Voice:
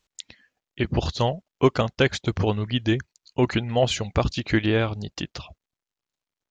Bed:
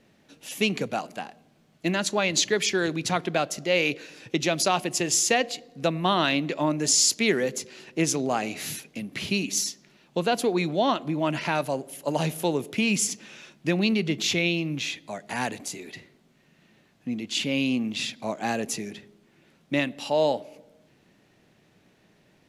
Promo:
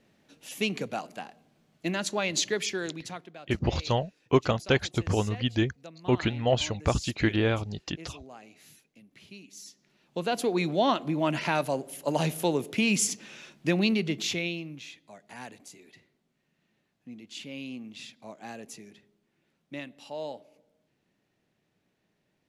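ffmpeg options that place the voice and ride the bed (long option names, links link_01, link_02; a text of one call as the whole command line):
ffmpeg -i stem1.wav -i stem2.wav -filter_complex "[0:a]adelay=2700,volume=-3.5dB[link_01];[1:a]volume=16dB,afade=type=out:start_time=2.5:duration=0.82:silence=0.141254,afade=type=in:start_time=9.58:duration=1.15:silence=0.0944061,afade=type=out:start_time=13.8:duration=1:silence=0.223872[link_02];[link_01][link_02]amix=inputs=2:normalize=0" out.wav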